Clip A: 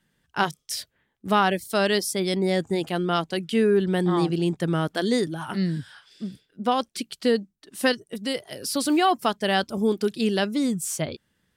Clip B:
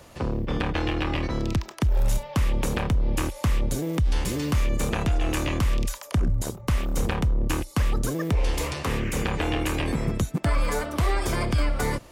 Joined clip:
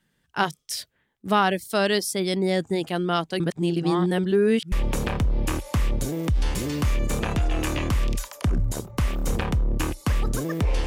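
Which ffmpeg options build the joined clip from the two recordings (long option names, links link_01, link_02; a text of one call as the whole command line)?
ffmpeg -i cue0.wav -i cue1.wav -filter_complex "[0:a]apad=whole_dur=10.86,atrim=end=10.86,asplit=2[link_01][link_02];[link_01]atrim=end=3.402[link_03];[link_02]atrim=start=3.398:end=4.722,asetpts=PTS-STARTPTS,areverse[link_04];[1:a]atrim=start=2.418:end=8.56[link_05];[link_03][link_04]acrossfade=duration=0.004:curve1=hsin:curve2=hsin[link_06];[link_06][link_05]acrossfade=duration=0.004:curve1=hsin:curve2=hsin" out.wav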